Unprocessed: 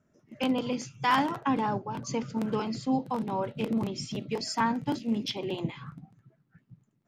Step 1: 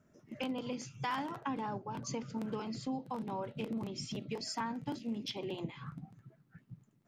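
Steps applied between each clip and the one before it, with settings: compression 2.5:1, threshold -43 dBFS, peak gain reduction 15 dB; trim +2 dB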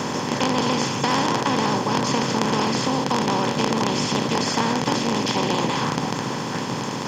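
spectral levelling over time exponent 0.2; vibrato 13 Hz 52 cents; trim +8 dB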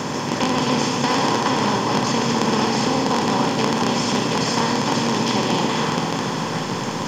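Schroeder reverb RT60 3.9 s, DRR 2.5 dB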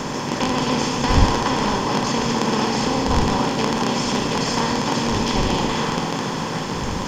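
wind noise 110 Hz -27 dBFS; trim -1 dB

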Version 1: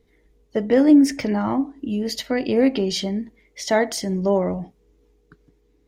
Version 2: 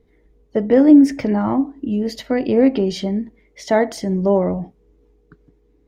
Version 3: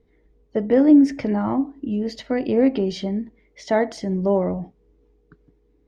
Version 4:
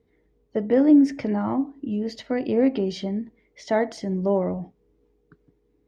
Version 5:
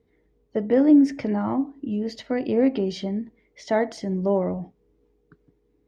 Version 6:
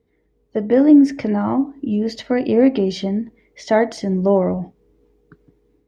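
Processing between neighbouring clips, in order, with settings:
treble shelf 2.1 kHz -11 dB; trim +4 dB
low-pass 6.5 kHz 12 dB/octave; trim -3.5 dB
high-pass 66 Hz 12 dB/octave; trim -2.5 dB
no audible change
level rider gain up to 7 dB

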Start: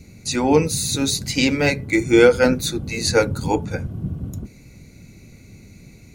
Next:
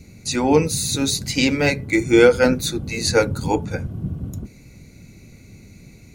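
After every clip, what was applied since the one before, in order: no audible change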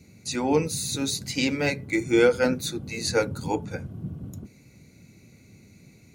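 high-pass 92 Hz; trim -6.5 dB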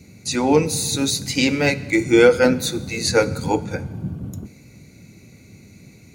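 plate-style reverb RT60 1.5 s, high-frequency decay 1×, DRR 15.5 dB; trim +6.5 dB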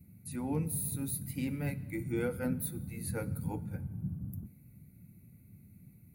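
FFT filter 180 Hz 0 dB, 420 Hz -15 dB, 770 Hz -13 dB, 1.9 kHz -14 dB, 3.6 kHz -21 dB, 6.5 kHz -27 dB, 11 kHz +6 dB; trim -9 dB

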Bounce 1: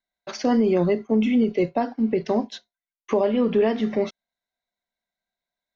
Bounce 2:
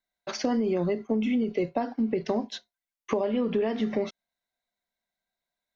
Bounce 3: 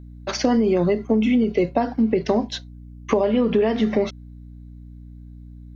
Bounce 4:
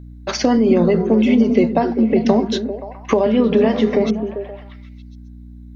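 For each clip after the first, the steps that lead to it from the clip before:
compression, threshold -23 dBFS, peak gain reduction 7.5 dB
hum 60 Hz, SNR 18 dB; trim +7.5 dB
repeats whose band climbs or falls 131 ms, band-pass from 170 Hz, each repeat 0.7 oct, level -2.5 dB; trim +3.5 dB

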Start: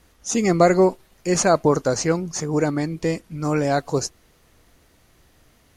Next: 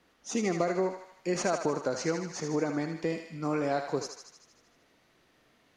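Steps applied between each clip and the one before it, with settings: three-band isolator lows -17 dB, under 150 Hz, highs -13 dB, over 5.1 kHz; compression, threshold -19 dBFS, peak gain reduction 9.5 dB; on a send: thinning echo 77 ms, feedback 66%, high-pass 730 Hz, level -5.5 dB; on the sum: trim -6 dB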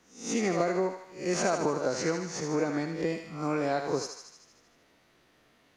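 reverse spectral sustain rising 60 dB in 0.43 s

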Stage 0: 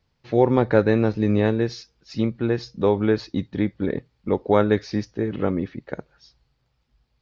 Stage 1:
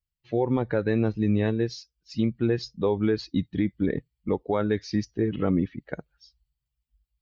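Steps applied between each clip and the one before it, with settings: expander on every frequency bin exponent 1.5; gain riding within 4 dB 0.5 s; peak limiter -16 dBFS, peak gain reduction 7 dB; trim +1.5 dB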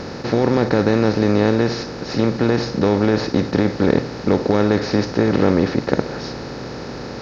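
spectral levelling over time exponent 0.2; trim +1.5 dB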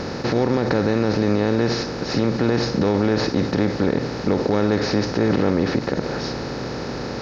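peak limiter -11.5 dBFS, peak gain reduction 9.5 dB; trim +2 dB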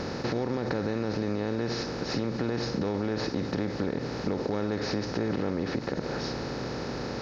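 compression 3:1, threshold -21 dBFS, peak gain reduction 5.5 dB; trim -5.5 dB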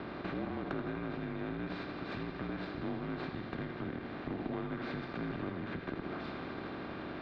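mistuned SSB -170 Hz 330–3500 Hz; thinning echo 81 ms, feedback 83%, high-pass 470 Hz, level -7.5 dB; Chebyshev shaper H 4 -20 dB, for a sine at -18 dBFS; trim -6 dB

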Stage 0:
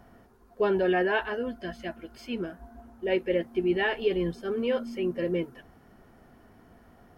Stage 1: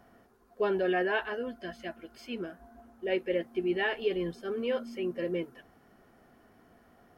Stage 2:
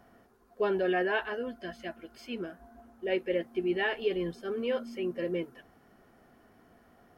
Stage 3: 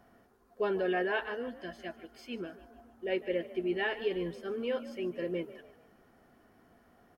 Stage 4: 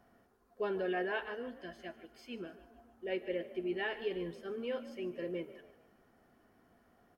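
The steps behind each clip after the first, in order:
bass shelf 150 Hz -9.5 dB; band-stop 920 Hz, Q 14; trim -2.5 dB
no audible change
frequency-shifting echo 149 ms, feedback 43%, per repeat +41 Hz, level -16.5 dB; trim -2.5 dB
reverberation RT60 0.95 s, pre-delay 32 ms, DRR 17 dB; trim -4.5 dB

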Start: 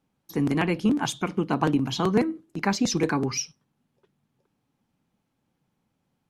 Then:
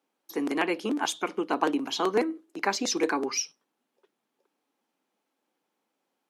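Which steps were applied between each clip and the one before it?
high-pass 310 Hz 24 dB/octave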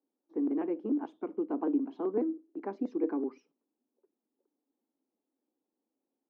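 ladder band-pass 320 Hz, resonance 45%; trim +5.5 dB

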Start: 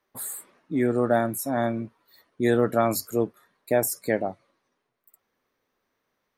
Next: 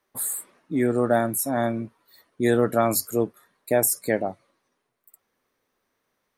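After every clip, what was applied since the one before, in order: peaking EQ 9.9 kHz +6.5 dB 0.9 oct; trim +1 dB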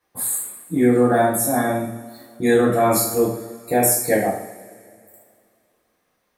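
two-slope reverb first 0.57 s, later 2.4 s, from -19 dB, DRR -7.5 dB; trim -2.5 dB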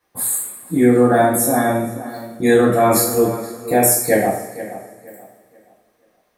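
tape echo 477 ms, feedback 32%, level -13 dB, low-pass 2.8 kHz; trim +3 dB

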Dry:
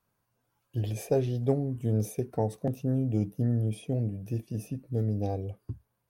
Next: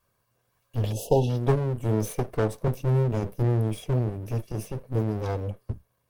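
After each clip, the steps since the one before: comb filter that takes the minimum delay 1.8 ms; spectral selection erased 0.92–1.29 s, 960–2600 Hz; trim +6.5 dB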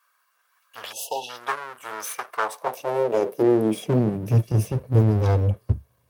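high-pass sweep 1.3 kHz -> 77 Hz, 2.23–4.84 s; trim +5.5 dB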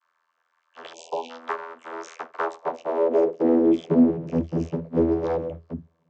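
vocoder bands 32, saw 82.6 Hz

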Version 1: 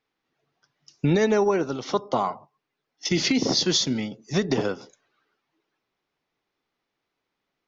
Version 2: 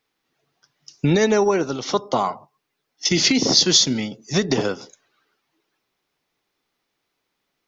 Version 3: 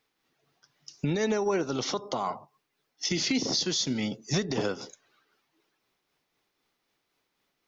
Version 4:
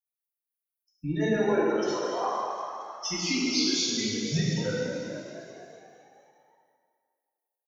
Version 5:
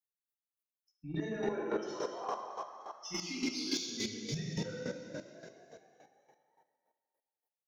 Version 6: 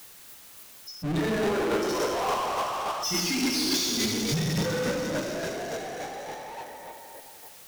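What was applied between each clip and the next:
treble shelf 4.4 kHz +9 dB; trim +3 dB
compression 6:1, threshold -22 dBFS, peak gain reduction 11 dB; peak limiter -17 dBFS, peak gain reduction 7.5 dB; tremolo 3.9 Hz, depth 31%
expander on every frequency bin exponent 3; on a send: frequency-shifting echo 230 ms, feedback 61%, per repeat +51 Hz, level -9.5 dB; on the sum: plate-style reverb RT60 2.1 s, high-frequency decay 0.75×, DRR -7 dB
square tremolo 3.5 Hz, depth 65%, duty 20%; in parallel at -4 dB: saturation -30.5 dBFS, distortion -9 dB; on the sum: trim -7.5 dB
power-law waveshaper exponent 0.35; trim +1.5 dB

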